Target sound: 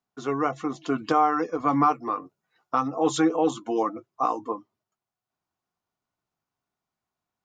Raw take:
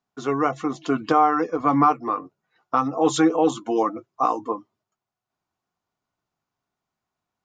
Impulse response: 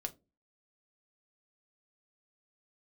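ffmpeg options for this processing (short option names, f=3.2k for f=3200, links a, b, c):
-filter_complex "[0:a]asettb=1/sr,asplit=3[a][b][c];[a]atrim=end=0.984[d];[b]atrim=start=0.98:end=2.83,asetpts=PTS-STARTPTS,afade=t=in:d=0.004:c=qsin,afade=t=out:st=1.846:d=0.004:c=qsin,highshelf=f=4.8k:g=6[e];[c]atrim=start=2.826[f];[d][e]acrossfade=d=0.004:c1=hsin:c2=qsin[g];[g][f]acrossfade=d=0.004:c1=qsin:c2=hsin,volume=-3.5dB"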